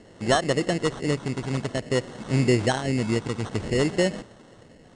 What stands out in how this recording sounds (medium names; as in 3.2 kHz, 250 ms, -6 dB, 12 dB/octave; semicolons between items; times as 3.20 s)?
phasing stages 12, 0.53 Hz, lowest notch 700–2500 Hz; aliases and images of a low sample rate 2.4 kHz, jitter 0%; MP2